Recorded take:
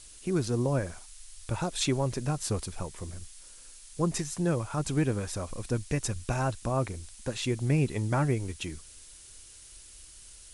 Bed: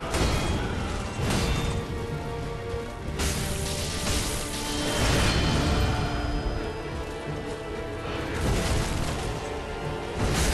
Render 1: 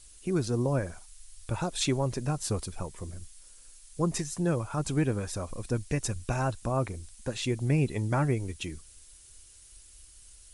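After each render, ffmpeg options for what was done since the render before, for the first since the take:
-af "afftdn=nr=6:nf=-51"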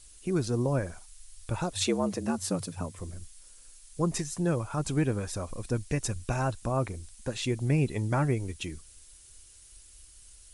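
-filter_complex "[0:a]asettb=1/sr,asplit=3[s0][s1][s2];[s0]atrim=end=1.734[s3];[s1]atrim=start=1.73:end=2.99,asetpts=PTS-STARTPTS,afade=t=in:d=0.004:c=qsin,afade=t=out:st=1.256:d=0.004:c=qsin,afreqshift=79[s4];[s2]atrim=start=2.986[s5];[s3][s4]acrossfade=d=0.004:c1=hsin:c2=qsin[s6];[s6][s5]acrossfade=d=0.004:c1=qsin:c2=hsin"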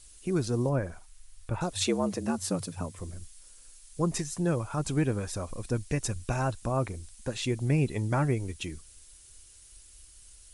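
-filter_complex "[0:a]asettb=1/sr,asplit=3[s0][s1][s2];[s0]atrim=end=0.694[s3];[s1]atrim=start=0.69:end=1.61,asetpts=PTS-STARTPTS,afade=t=in:d=0.004:c=qsin,afade=t=out:st=0.916:d=0.004:c=qsin,acrossover=split=2600[s4][s5];[s5]acompressor=threshold=0.00126:ratio=4:attack=1:release=60[s6];[s4][s6]amix=inputs=2:normalize=0[s7];[s2]atrim=start=1.606[s8];[s3][s7]acrossfade=d=0.004:c1=hsin:c2=qsin[s9];[s9][s8]acrossfade=d=0.004:c1=qsin:c2=hsin"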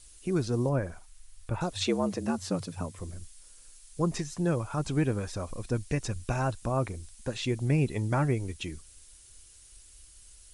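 -filter_complex "[0:a]acrossover=split=6400[s0][s1];[s1]acompressor=threshold=0.00316:ratio=4:attack=1:release=60[s2];[s0][s2]amix=inputs=2:normalize=0"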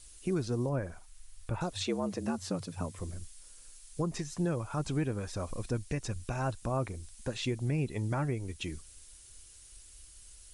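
-af "alimiter=limit=0.0794:level=0:latency=1:release=448"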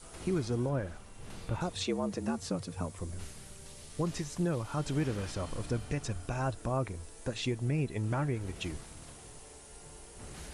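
-filter_complex "[1:a]volume=0.075[s0];[0:a][s0]amix=inputs=2:normalize=0"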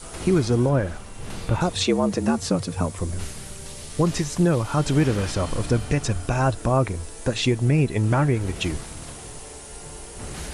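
-af "volume=3.98"

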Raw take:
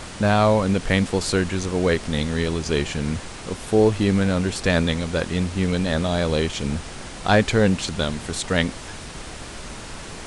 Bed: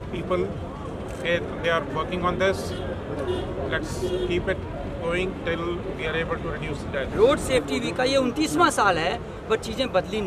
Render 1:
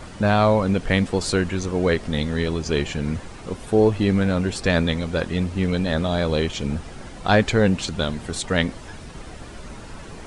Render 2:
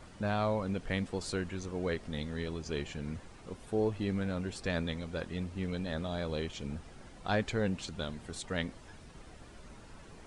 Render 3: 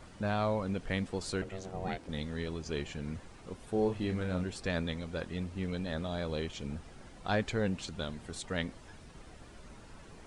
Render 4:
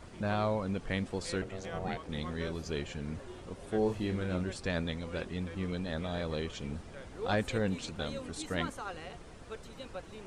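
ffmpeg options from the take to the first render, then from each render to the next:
-af "afftdn=nr=9:nf=-37"
-af "volume=0.2"
-filter_complex "[0:a]asettb=1/sr,asplit=3[s0][s1][s2];[s0]atrim=end=1.424[s3];[s1]atrim=start=1.42:end=2.09,asetpts=PTS-STARTPTS,afade=t=in:d=0.004:c=qsin,afade=t=out:st=0.666:d=0.004:c=qsin,aeval=exprs='val(0)*sin(2*PI*290*n/s)':c=same[s4];[s2]atrim=start=2.086[s5];[s3][s4]acrossfade=d=0.004:c1=hsin:c2=qsin[s6];[s6][s5]acrossfade=d=0.004:c1=qsin:c2=hsin,asettb=1/sr,asplit=3[s7][s8][s9];[s7]atrim=end=3.714[s10];[s8]atrim=start=3.71:end=4.44,asetpts=PTS-STARTPTS,afade=t=in:d=0.004:c=qsin,afade=t=out:st=0.726:d=0.004:c=qsin,asplit=2[s11][s12];[s12]adelay=33,volume=0.501[s13];[s11][s13]amix=inputs=2:normalize=0,atrim=end_sample=32193[s14];[s9]atrim=start=4.436[s15];[s10][s14]acrossfade=d=0.004:c1=hsin:c2=qsin[s16];[s16][s15]acrossfade=d=0.004:c1=qsin:c2=hsin"
-filter_complex "[1:a]volume=0.0841[s0];[0:a][s0]amix=inputs=2:normalize=0"

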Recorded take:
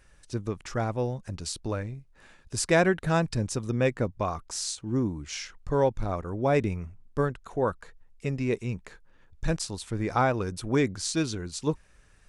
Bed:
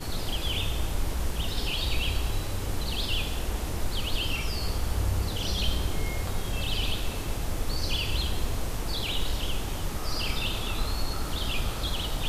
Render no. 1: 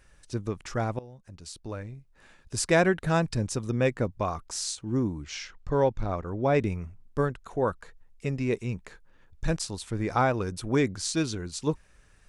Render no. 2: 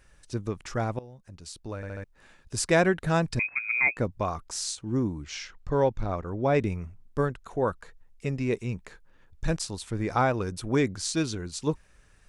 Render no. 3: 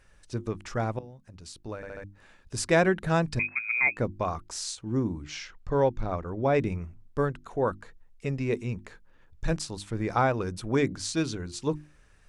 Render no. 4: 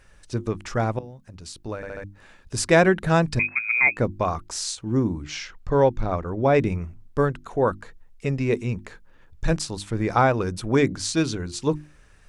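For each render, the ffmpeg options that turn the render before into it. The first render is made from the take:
-filter_complex "[0:a]asettb=1/sr,asplit=3[s0][s1][s2];[s0]atrim=end=5.244[s3];[s1]atrim=start=5.24:end=6.6,asetpts=PTS-STARTPTS,afade=t=in:d=0.004:c=qsin,afade=t=out:st=1.356:d=0.004:c=qsin,lowpass=5900[s4];[s2]atrim=start=6.596[s5];[s3][s4]acrossfade=d=0.004:c1=hsin:c2=qsin[s6];[s6][s5]acrossfade=d=0.004:c1=qsin:c2=hsin,asplit=2[s7][s8];[s7]atrim=end=0.99,asetpts=PTS-STARTPTS,afade=t=out:st=0.986:d=0.004:c=hsin:silence=0.1[s9];[s8]atrim=start=0.99,asetpts=PTS-STARTPTS,afade=t=in:d=1.56:silence=0.1[s10];[s9][s10]concat=n=2:v=0:a=1"
-filter_complex "[0:a]asettb=1/sr,asplit=3[s0][s1][s2];[s0]atrim=end=3.394[s3];[s1]atrim=start=3.39:end=3.97,asetpts=PTS-STARTPTS,afade=t=in:d=0.004:c=qsin,afade=t=out:st=0.576:d=0.004:c=qsin,lowpass=f=2200:t=q:w=0.5098,lowpass=f=2200:t=q:w=0.6013,lowpass=f=2200:t=q:w=0.9,lowpass=f=2200:t=q:w=2.563,afreqshift=-2600[s4];[s2]atrim=start=3.966[s5];[s3][s4]acrossfade=d=0.004:c1=hsin:c2=qsin[s6];[s6][s5]acrossfade=d=0.004:c1=qsin:c2=hsin,asplit=5[s7][s8][s9][s10][s11];[s7]atrim=end=1.832[s12];[s8]atrim=start=1.758:end=1.832[s13];[s9]atrim=start=1.758:end=1.832[s14];[s10]atrim=start=1.758:end=1.832[s15];[s11]atrim=start=2.038[s16];[s12][s13]acrossfade=d=0.004:c1=hsin:c2=hsin[s17];[s17][s14]acrossfade=d=0.004:c1=hsin:c2=hsin[s18];[s18][s15]acrossfade=d=0.004:c1=hsin:c2=hsin[s19];[s19][s16]acrossfade=d=0.004:c1=hsin:c2=hsin"
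-af "highshelf=f=6100:g=-5,bandreject=f=50:t=h:w=6,bandreject=f=100:t=h:w=6,bandreject=f=150:t=h:w=6,bandreject=f=200:t=h:w=6,bandreject=f=250:t=h:w=6,bandreject=f=300:t=h:w=6,bandreject=f=350:t=h:w=6"
-af "volume=1.88"

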